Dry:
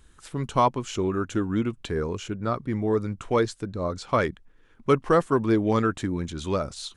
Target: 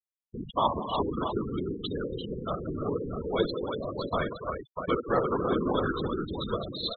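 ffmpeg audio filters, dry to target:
-filter_complex "[0:a]acrossover=split=250[a][b];[a]volume=30.5dB,asoftclip=hard,volume=-30.5dB[c];[c][b]amix=inputs=2:normalize=0,anlmdn=0.0631,asplit=2[d][e];[e]aecho=0:1:61|125|183|286|342|641:0.376|0.119|0.266|0.282|0.501|0.447[f];[d][f]amix=inputs=2:normalize=0,acrusher=bits=11:mix=0:aa=0.000001,equalizer=f=3.7k:w=2.7:g=14,bandreject=f=5.1k:w=23,afftfilt=real='hypot(re,im)*cos(2*PI*random(0))':imag='hypot(re,im)*sin(2*PI*random(1))':win_size=512:overlap=0.75,afftfilt=real='re*gte(hypot(re,im),0.0447)':imag='im*gte(hypot(re,im),0.0447)':win_size=1024:overlap=0.75"

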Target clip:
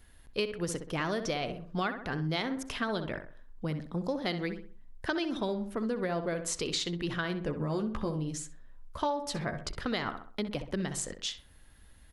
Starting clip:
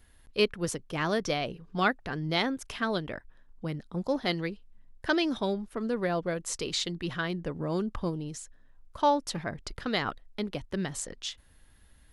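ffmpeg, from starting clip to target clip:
-filter_complex "[0:a]asettb=1/sr,asplit=3[a][b][c];[a]atrim=end=7.454[d];[b]atrim=start=7.45:end=9.69,asetpts=PTS-STARTPTS,afade=t=in:d=0.004:c=qsin,afade=t=out:st=2.236:d=0.004:c=qsin,asplit=2[e][f];[f]adelay=14,volume=-6dB[g];[e][g]amix=inputs=2:normalize=0,atrim=end_sample=98784[h];[c]atrim=start=9.686[i];[d][h]acrossfade=d=0.004:c1=hsin:c2=qsin[j];[j][i]acrossfade=d=0.004:c1=qsin:c2=hsin,asplit=2[k][l];[l]adelay=64,lowpass=f=2.1k:p=1,volume=-9dB,asplit=2[m][n];[n]adelay=64,lowpass=f=2.1k:p=1,volume=0.39,asplit=2[o][p];[p]adelay=64,lowpass=f=2.1k:p=1,volume=0.39,asplit=2[q][r];[r]adelay=64,lowpass=f=2.1k:p=1,volume=0.39[s];[k][m][o][q][s]amix=inputs=5:normalize=0,acompressor=threshold=-30dB:ratio=6,volume=1.5dB"

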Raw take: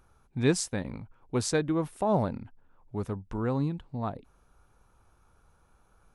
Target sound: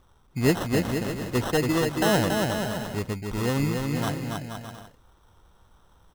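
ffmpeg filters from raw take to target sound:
-af "acrusher=samples=19:mix=1:aa=0.000001,aecho=1:1:280|476|613.2|709.2|776.5:0.631|0.398|0.251|0.158|0.1,volume=3dB"

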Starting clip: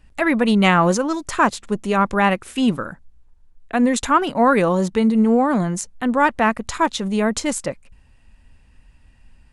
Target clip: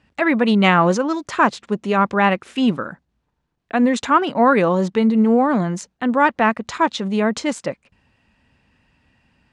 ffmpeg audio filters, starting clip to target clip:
-af "highpass=130,lowpass=5k,volume=1dB"

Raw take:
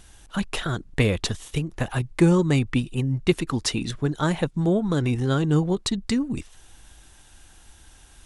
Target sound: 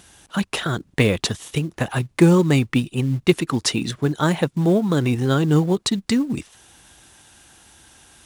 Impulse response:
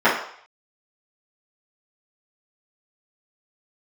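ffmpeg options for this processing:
-filter_complex "[0:a]highpass=110,asplit=2[a][b];[b]acrusher=bits=5:mode=log:mix=0:aa=0.000001,volume=-4dB[c];[a][c]amix=inputs=2:normalize=0"

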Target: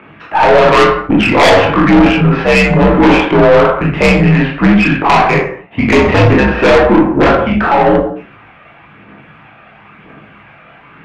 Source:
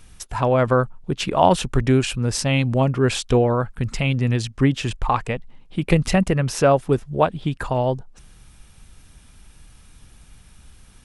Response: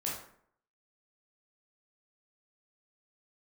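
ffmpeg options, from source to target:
-filter_complex "[0:a]highpass=f=280:t=q:w=0.5412,highpass=f=280:t=q:w=1.307,lowpass=f=2.6k:t=q:w=0.5176,lowpass=f=2.6k:t=q:w=0.7071,lowpass=f=2.6k:t=q:w=1.932,afreqshift=-80,aphaser=in_gain=1:out_gain=1:delay=1.7:decay=0.51:speed=0.99:type=triangular,aeval=exprs='1*sin(PI/2*4.47*val(0)/1)':c=same[a];[1:a]atrim=start_sample=2205,afade=t=out:st=0.34:d=0.01,atrim=end_sample=15435[b];[a][b]afir=irnorm=-1:irlink=0,aeval=exprs='(tanh(1.58*val(0)+0.2)-tanh(0.2))/1.58':c=same,volume=1dB"

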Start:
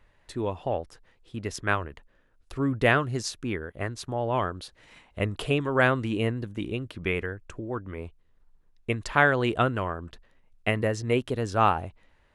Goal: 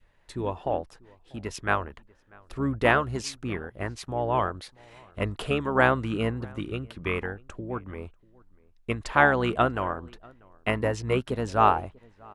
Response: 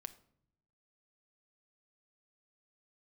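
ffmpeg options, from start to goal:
-filter_complex "[0:a]asplit=2[a][b];[b]asetrate=22050,aresample=44100,atempo=2,volume=-10dB[c];[a][c]amix=inputs=2:normalize=0,asplit=2[d][e];[e]adelay=641.4,volume=-25dB,highshelf=f=4k:g=-14.4[f];[d][f]amix=inputs=2:normalize=0,adynamicequalizer=threshold=0.0178:dfrequency=920:dqfactor=0.97:tfrequency=920:tqfactor=0.97:attack=5:release=100:ratio=0.375:range=2.5:mode=boostabove:tftype=bell,volume=-2dB"

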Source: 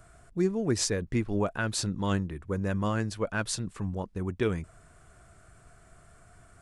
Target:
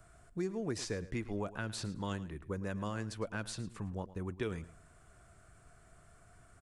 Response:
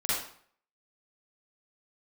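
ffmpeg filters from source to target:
-filter_complex "[0:a]acrossover=split=430|3800[a][b][c];[a]acompressor=threshold=-32dB:ratio=4[d];[b]acompressor=threshold=-34dB:ratio=4[e];[c]acompressor=threshold=-41dB:ratio=4[f];[d][e][f]amix=inputs=3:normalize=0,asplit=2[g][h];[h]aecho=0:1:109|218:0.15|0.0344[i];[g][i]amix=inputs=2:normalize=0,volume=-5dB"

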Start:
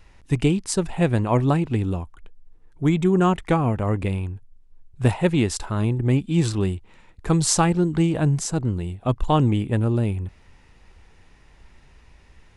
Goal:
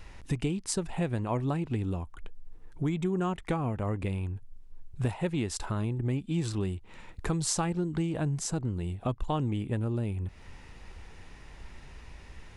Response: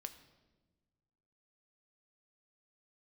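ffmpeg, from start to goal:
-af "acompressor=threshold=-36dB:ratio=3,volume=4dB"

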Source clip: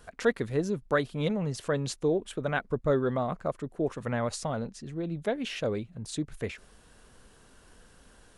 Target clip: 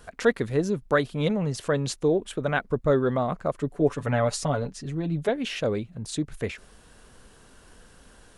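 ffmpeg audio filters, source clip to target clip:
-filter_complex "[0:a]asettb=1/sr,asplit=3[a][b][c];[a]atrim=end=3.574[d];[b]atrim=start=3.57:end=5.29,asetpts=PTS-STARTPTS,afade=t=in:d=0.004:c=qsin,afade=t=out:st=1.716:d=0.004:c=qsin,aecho=1:1:7:0.71,atrim=end_sample=75852[e];[c]atrim=start=5.286[f];[d][e]acrossfade=d=0.004:c1=hsin:c2=qsin[g];[g][f]acrossfade=d=0.004:c1=qsin:c2=hsin,volume=4dB"

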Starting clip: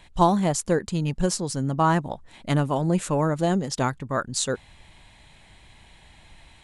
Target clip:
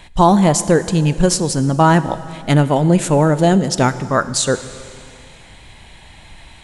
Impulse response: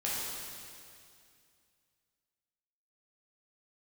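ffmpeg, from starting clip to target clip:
-filter_complex "[0:a]asettb=1/sr,asplit=3[a][b][c];[a]atrim=end=1.804[d];[b]atrim=start=1.8:end=3.99,asetpts=PTS-STARTPTS,afade=t=in:d=0.004:c=qsin,afade=t=out:st=2.186:d=0.004:c=qsin,equalizer=f=1.1k:w=6.9:g=-9[e];[c]atrim=start=3.986[f];[d][e]acrossfade=d=0.004:c1=hsin:c2=qsin[g];[g][f]acrossfade=d=0.004:c1=qsin:c2=hsin,asplit=2[h][i];[1:a]atrim=start_sample=2205[j];[i][j]afir=irnorm=-1:irlink=0,volume=-18dB[k];[h][k]amix=inputs=2:normalize=0,alimiter=level_in=10dB:limit=-1dB:release=50:level=0:latency=1,volume=-1dB"

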